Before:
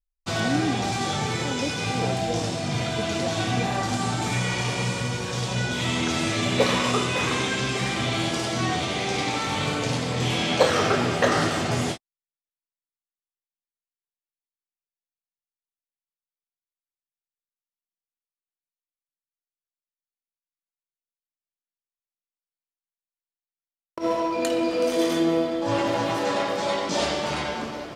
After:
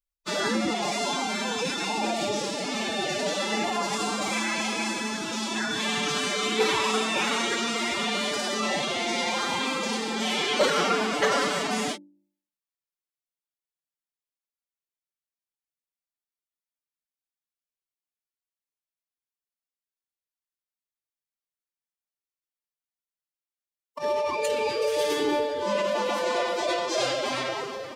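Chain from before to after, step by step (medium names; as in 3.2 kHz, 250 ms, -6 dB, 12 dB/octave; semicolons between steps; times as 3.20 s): bass shelf 290 Hz -7.5 dB; de-hum 54.56 Hz, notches 9; formant-preserving pitch shift +10 st; saturation -13 dBFS, distortion -27 dB; trim +1 dB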